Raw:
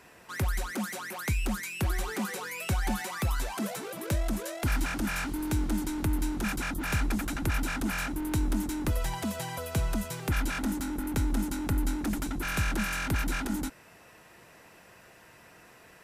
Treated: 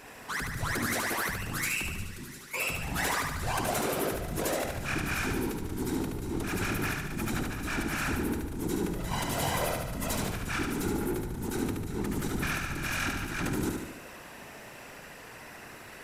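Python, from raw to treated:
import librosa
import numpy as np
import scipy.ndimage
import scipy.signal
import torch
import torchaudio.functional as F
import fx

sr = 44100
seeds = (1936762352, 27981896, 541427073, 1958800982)

p1 = fx.tone_stack(x, sr, knobs='6-0-2', at=(1.92, 2.54))
p2 = fx.over_compress(p1, sr, threshold_db=-35.0, ratio=-1.0)
p3 = 10.0 ** (-22.0 / 20.0) * np.tanh(p2 / 10.0 ** (-22.0 / 20.0))
p4 = fx.whisperise(p3, sr, seeds[0])
p5 = p4 + fx.echo_feedback(p4, sr, ms=73, feedback_pct=57, wet_db=-4.0, dry=0)
y = F.gain(torch.from_numpy(p5), 1.5).numpy()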